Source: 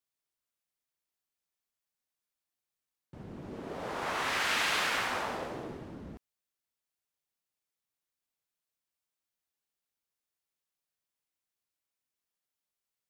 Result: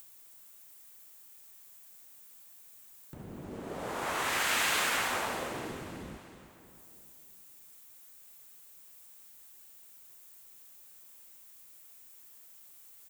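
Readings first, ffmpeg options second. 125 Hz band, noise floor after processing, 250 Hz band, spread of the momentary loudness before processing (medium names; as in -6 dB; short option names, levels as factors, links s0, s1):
+0.5 dB, -55 dBFS, +0.5 dB, 19 LU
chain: -af "acompressor=mode=upward:threshold=0.00631:ratio=2.5,aecho=1:1:316|632|948|1264|1580:0.251|0.131|0.0679|0.0353|0.0184,aexciter=amount=2.5:drive=5.5:freq=6900"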